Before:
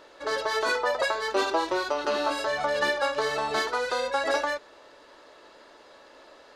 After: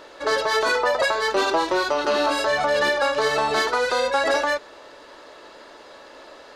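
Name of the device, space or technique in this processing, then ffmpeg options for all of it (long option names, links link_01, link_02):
soft clipper into limiter: -af "asoftclip=type=tanh:threshold=-14.5dB,alimiter=limit=-19.5dB:level=0:latency=1:release=81,volume=7.5dB"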